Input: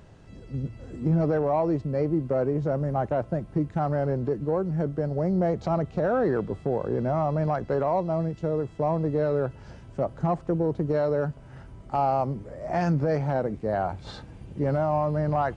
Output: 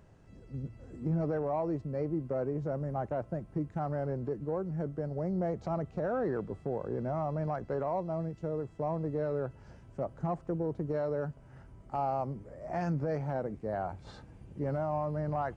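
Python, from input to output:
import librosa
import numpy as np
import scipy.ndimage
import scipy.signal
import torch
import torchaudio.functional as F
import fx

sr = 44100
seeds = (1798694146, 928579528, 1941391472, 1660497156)

y = fx.peak_eq(x, sr, hz=3700.0, db=-5.5, octaves=0.87)
y = y * 10.0 ** (-8.0 / 20.0)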